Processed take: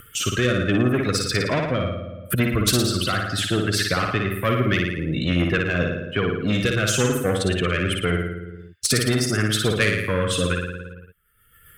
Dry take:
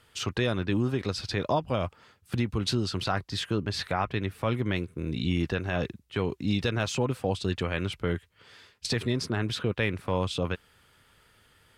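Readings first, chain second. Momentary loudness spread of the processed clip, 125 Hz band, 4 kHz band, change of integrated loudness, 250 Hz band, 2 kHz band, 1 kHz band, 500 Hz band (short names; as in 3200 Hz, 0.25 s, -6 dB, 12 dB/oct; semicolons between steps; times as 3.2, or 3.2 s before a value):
7 LU, +7.0 dB, +8.5 dB, +8.0 dB, +7.0 dB, +11.0 dB, +5.0 dB, +7.0 dB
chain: per-bin expansion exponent 2; in parallel at +2.5 dB: soft clip -28.5 dBFS, distortion -11 dB; on the sum: gate with hold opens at -56 dBFS; rotary speaker horn 0.7 Hz, later 7.5 Hz, at 3.6; HPF 120 Hz 6 dB/oct; on a send: flutter echo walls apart 9.7 m, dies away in 0.62 s; on the sum: upward compressor, threshold -37 dBFS; EQ curve 230 Hz 0 dB, 580 Hz -4 dB, 870 Hz -24 dB, 1300 Hz -1 dB, 4600 Hz -16 dB, 9400 Hz -7 dB; spectral compressor 2:1; gain +8 dB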